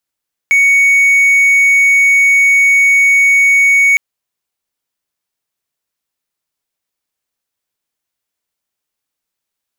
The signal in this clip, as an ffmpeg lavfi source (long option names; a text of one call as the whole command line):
ffmpeg -f lavfi -i "aevalsrc='0.631*(1-4*abs(mod(2230*t+0.25,1)-0.5))':duration=3.46:sample_rate=44100" out.wav